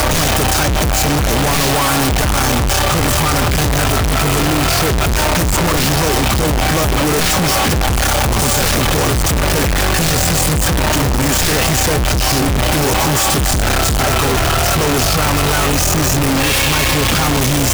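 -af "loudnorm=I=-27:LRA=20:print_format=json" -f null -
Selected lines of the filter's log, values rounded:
"input_i" : "-13.6",
"input_tp" : "-8.0",
"input_lra" : "0.7",
"input_thresh" : "-23.6",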